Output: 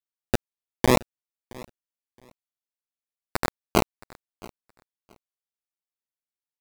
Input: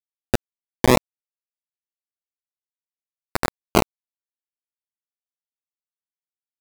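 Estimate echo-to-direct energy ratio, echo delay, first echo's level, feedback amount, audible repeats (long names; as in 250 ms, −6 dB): −22.0 dB, 670 ms, −22.0 dB, repeats not evenly spaced, 1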